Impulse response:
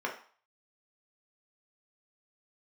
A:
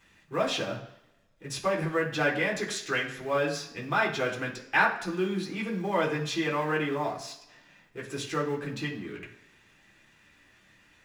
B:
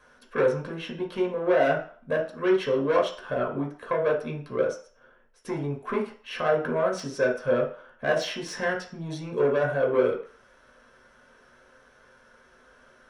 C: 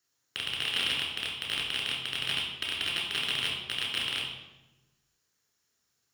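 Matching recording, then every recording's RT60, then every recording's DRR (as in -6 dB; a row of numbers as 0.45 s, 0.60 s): B; 0.80 s, 0.45 s, 1.1 s; -4.0 dB, -1.0 dB, -1.5 dB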